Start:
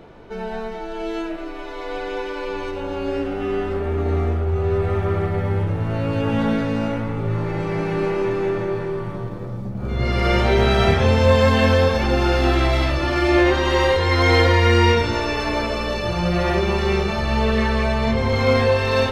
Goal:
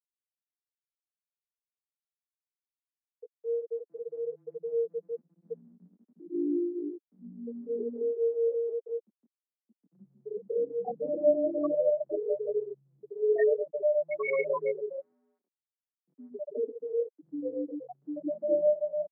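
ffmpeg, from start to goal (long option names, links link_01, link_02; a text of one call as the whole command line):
ffmpeg -i in.wav -filter_complex "[0:a]asettb=1/sr,asplit=3[link_01][link_02][link_03];[link_01]atrim=end=7.124[link_04];[link_02]atrim=start=7.12:end=7.89,asetpts=PTS-STARTPTS,afade=type=in:duration=0.004:curve=qsin,afade=type=out:start_time=0.766:duration=0.004:curve=qsin,acontrast=21[link_05];[link_03]atrim=start=7.886[link_06];[link_04][link_05]acrossfade=duration=0.004:curve1=hsin:curve2=qsin[link_07];[link_07][link_06]acrossfade=duration=0.004:curve1=qsin:curve2=hsin,asplit=3[link_08][link_09][link_10];[link_08]afade=type=out:start_time=14.7:duration=0.02[link_11];[link_09]aeval=exprs='max(val(0),0)':channel_layout=same,afade=type=in:start_time=14.7:duration=0.02,afade=type=out:start_time=15.38:duration=0.02[link_12];[link_10]afade=type=in:start_time=15.38:duration=0.02[link_13];[link_11][link_12][link_13]amix=inputs=3:normalize=0,equalizer=frequency=1100:width=1.1:gain=-2.5,asplit=2[link_14][link_15];[link_15]adelay=140,lowpass=frequency=1700:poles=1,volume=-8.5dB,asplit=2[link_16][link_17];[link_17]adelay=140,lowpass=frequency=1700:poles=1,volume=0.35,asplit=2[link_18][link_19];[link_19]adelay=140,lowpass=frequency=1700:poles=1,volume=0.35,asplit=2[link_20][link_21];[link_21]adelay=140,lowpass=frequency=1700:poles=1,volume=0.35[link_22];[link_14][link_16][link_18][link_20][link_22]amix=inputs=5:normalize=0,afftfilt=real='re*gte(hypot(re,im),0.708)':imag='im*gte(hypot(re,im),0.708)':win_size=1024:overlap=0.75,highpass=frequency=240:width_type=q:width=0.5412,highpass=frequency=240:width_type=q:width=1.307,lowpass=frequency=2100:width_type=q:width=0.5176,lowpass=frequency=2100:width_type=q:width=0.7071,lowpass=frequency=2100:width_type=q:width=1.932,afreqshift=72,flanger=delay=5.4:depth=5.4:regen=-8:speed=1.1:shape=triangular,volume=-2.5dB" out.wav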